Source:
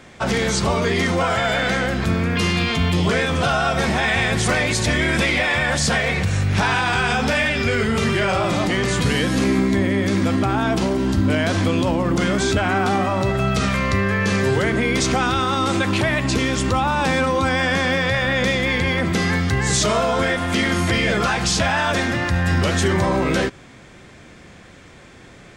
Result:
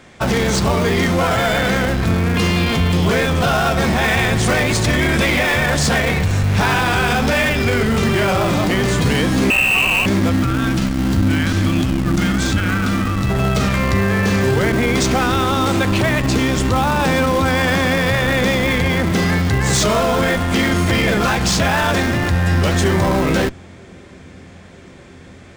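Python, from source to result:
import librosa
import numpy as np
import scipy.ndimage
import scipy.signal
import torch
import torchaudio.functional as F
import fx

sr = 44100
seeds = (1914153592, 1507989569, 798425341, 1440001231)

p1 = fx.freq_invert(x, sr, carrier_hz=2900, at=(9.5, 10.06))
p2 = fx.echo_wet_lowpass(p1, sr, ms=952, feedback_pct=80, hz=480.0, wet_db=-24)
p3 = fx.spec_erase(p2, sr, start_s=10.33, length_s=2.97, low_hz=350.0, high_hz=1100.0)
p4 = fx.schmitt(p3, sr, flips_db=-19.0)
y = p3 + (p4 * 10.0 ** (-3.5 / 20.0))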